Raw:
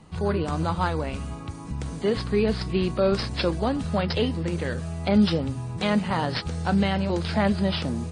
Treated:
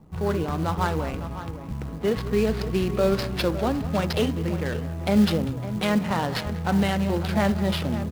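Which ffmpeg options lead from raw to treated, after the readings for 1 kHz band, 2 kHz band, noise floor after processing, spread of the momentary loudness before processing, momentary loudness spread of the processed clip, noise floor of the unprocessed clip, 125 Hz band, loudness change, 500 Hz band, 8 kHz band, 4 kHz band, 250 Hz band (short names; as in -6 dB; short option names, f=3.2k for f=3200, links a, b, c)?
+0.5 dB, +0.5 dB, -34 dBFS, 7 LU, 6 LU, -37 dBFS, +0.5 dB, +0.5 dB, +0.5 dB, +3.5 dB, -1.0 dB, +0.5 dB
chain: -af "aecho=1:1:67|196|557:0.126|0.188|0.237,adynamicsmooth=sensitivity=8:basefreq=570,acrusher=bits=6:mode=log:mix=0:aa=0.000001"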